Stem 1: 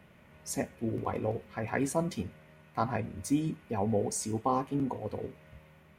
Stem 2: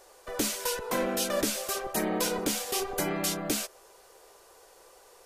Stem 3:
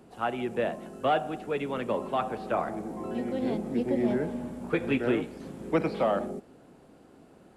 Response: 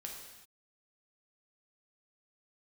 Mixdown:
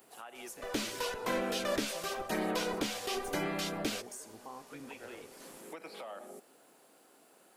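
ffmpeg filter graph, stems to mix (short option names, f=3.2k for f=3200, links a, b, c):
-filter_complex "[0:a]volume=-12.5dB,asplit=2[a][b];[1:a]acrossover=split=4500[c][d];[d]acompressor=threshold=-42dB:ratio=4:attack=1:release=60[e];[c][e]amix=inputs=2:normalize=0,equalizer=f=3.6k:w=0.44:g=3.5,adelay=350,volume=-4.5dB[f];[2:a]highpass=f=610:p=1,acompressor=threshold=-33dB:ratio=6,volume=-2dB[g];[b]apad=whole_len=333576[h];[g][h]sidechaincompress=threshold=-50dB:ratio=8:attack=16:release=335[i];[a][i]amix=inputs=2:normalize=0,aemphasis=mode=production:type=bsi,alimiter=level_in=11dB:limit=-24dB:level=0:latency=1:release=359,volume=-11dB,volume=0dB[j];[f][j]amix=inputs=2:normalize=0"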